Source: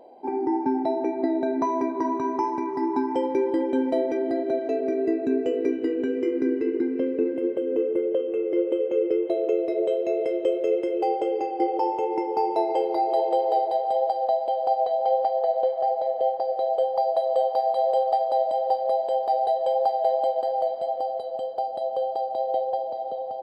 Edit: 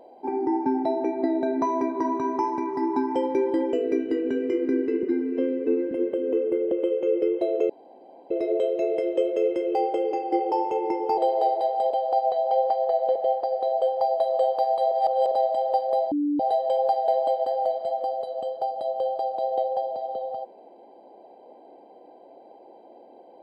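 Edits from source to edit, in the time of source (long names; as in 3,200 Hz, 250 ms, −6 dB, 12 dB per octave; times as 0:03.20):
0:03.73–0:05.46: remove
0:06.76–0:07.35: time-stretch 1.5×
0:08.15–0:08.60: remove
0:09.58: splice in room tone 0.61 s
0:12.45–0:13.28: remove
0:14.01–0:14.45: remove
0:15.70–0:16.12: remove
0:17.88–0:18.28: reverse
0:19.08–0:19.36: beep over 292 Hz −21 dBFS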